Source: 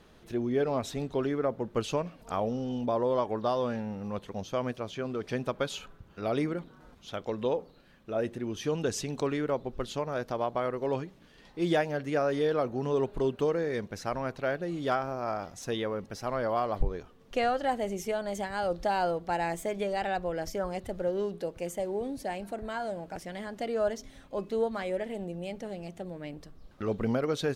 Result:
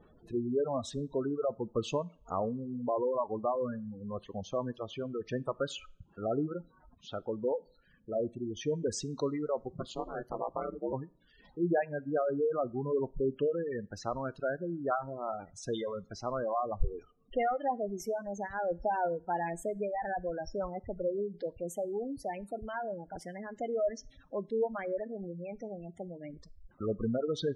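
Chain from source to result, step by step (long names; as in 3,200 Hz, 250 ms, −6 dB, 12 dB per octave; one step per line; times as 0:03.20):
0:09.68–0:10.92: ring modulation 160 Hz → 64 Hz
reverb reduction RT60 0.75 s
gate on every frequency bin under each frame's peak −15 dB strong
coupled-rooms reverb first 0.4 s, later 1.6 s, from −25 dB, DRR 20 dB
level −1.5 dB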